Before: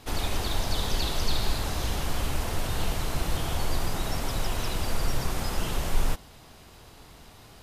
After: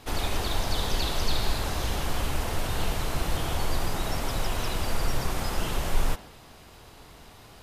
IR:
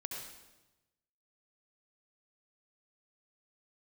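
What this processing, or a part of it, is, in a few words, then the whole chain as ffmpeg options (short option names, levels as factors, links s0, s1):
filtered reverb send: -filter_complex "[0:a]asplit=2[s0][s1];[s1]highpass=260,lowpass=4000[s2];[1:a]atrim=start_sample=2205[s3];[s2][s3]afir=irnorm=-1:irlink=0,volume=0.316[s4];[s0][s4]amix=inputs=2:normalize=0"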